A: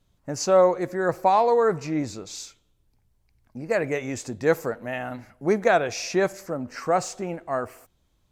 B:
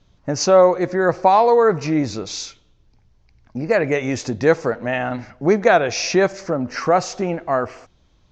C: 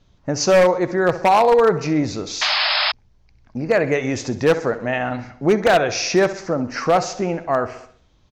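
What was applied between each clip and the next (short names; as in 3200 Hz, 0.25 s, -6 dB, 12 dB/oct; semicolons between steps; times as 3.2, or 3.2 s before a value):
steep low-pass 6400 Hz 48 dB/oct; in parallel at +1 dB: compressor, threshold -29 dBFS, peak gain reduction 15 dB; on the sum: gain +3.5 dB
feedback echo 65 ms, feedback 52%, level -14.5 dB; wavefolder -7.5 dBFS; painted sound noise, 2.41–2.92, 580–5300 Hz -19 dBFS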